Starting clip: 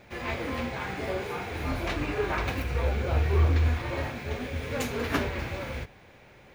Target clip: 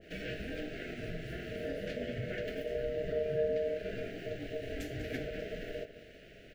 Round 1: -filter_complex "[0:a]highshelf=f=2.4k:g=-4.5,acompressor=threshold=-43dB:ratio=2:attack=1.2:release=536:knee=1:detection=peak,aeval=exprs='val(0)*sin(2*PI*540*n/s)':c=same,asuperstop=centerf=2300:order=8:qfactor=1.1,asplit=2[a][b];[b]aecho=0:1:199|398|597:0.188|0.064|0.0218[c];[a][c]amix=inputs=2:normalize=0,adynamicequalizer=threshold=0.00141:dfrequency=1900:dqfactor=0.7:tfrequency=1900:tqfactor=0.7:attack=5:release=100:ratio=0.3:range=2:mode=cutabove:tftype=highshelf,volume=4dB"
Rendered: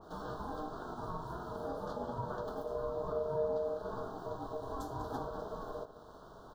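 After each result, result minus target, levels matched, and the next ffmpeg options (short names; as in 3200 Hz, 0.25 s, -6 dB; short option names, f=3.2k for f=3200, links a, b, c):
1000 Hz band +17.0 dB; compressor: peak gain reduction +3 dB
-filter_complex "[0:a]highshelf=f=2.4k:g=-4.5,acompressor=threshold=-43dB:ratio=2:attack=1.2:release=536:knee=1:detection=peak,aeval=exprs='val(0)*sin(2*PI*540*n/s)':c=same,asuperstop=centerf=1000:order=8:qfactor=1.1,asplit=2[a][b];[b]aecho=0:1:199|398|597:0.188|0.064|0.0218[c];[a][c]amix=inputs=2:normalize=0,adynamicequalizer=threshold=0.00141:dfrequency=1900:dqfactor=0.7:tfrequency=1900:tqfactor=0.7:attack=5:release=100:ratio=0.3:range=2:mode=cutabove:tftype=highshelf,volume=4dB"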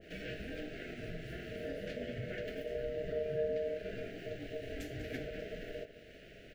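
compressor: peak gain reduction +3 dB
-filter_complex "[0:a]highshelf=f=2.4k:g=-4.5,acompressor=threshold=-37dB:ratio=2:attack=1.2:release=536:knee=1:detection=peak,aeval=exprs='val(0)*sin(2*PI*540*n/s)':c=same,asuperstop=centerf=1000:order=8:qfactor=1.1,asplit=2[a][b];[b]aecho=0:1:199|398|597:0.188|0.064|0.0218[c];[a][c]amix=inputs=2:normalize=0,adynamicequalizer=threshold=0.00141:dfrequency=1900:dqfactor=0.7:tfrequency=1900:tqfactor=0.7:attack=5:release=100:ratio=0.3:range=2:mode=cutabove:tftype=highshelf,volume=4dB"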